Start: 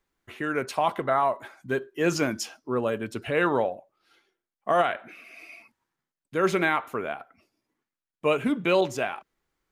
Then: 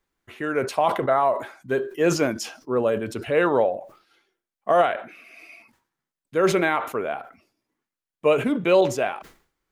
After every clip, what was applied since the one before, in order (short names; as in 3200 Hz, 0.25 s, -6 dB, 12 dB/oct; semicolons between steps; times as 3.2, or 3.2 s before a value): dynamic EQ 530 Hz, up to +6 dB, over -38 dBFS, Q 1.2; sustainer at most 120 dB/s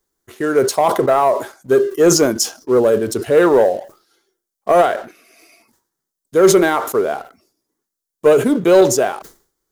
fifteen-band EQ 400 Hz +7 dB, 2500 Hz -11 dB, 6300 Hz +3 dB; sample leveller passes 1; high shelf 4700 Hz +12 dB; gain +2 dB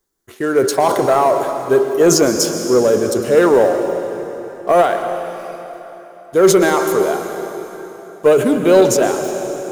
plate-style reverb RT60 3.7 s, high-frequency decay 0.85×, pre-delay 0.105 s, DRR 6.5 dB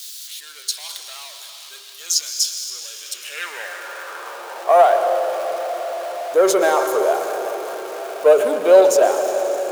zero-crossing step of -23.5 dBFS; notch 2000 Hz, Q 25; high-pass sweep 3800 Hz -> 580 Hz, 2.87–5.03; gain -5.5 dB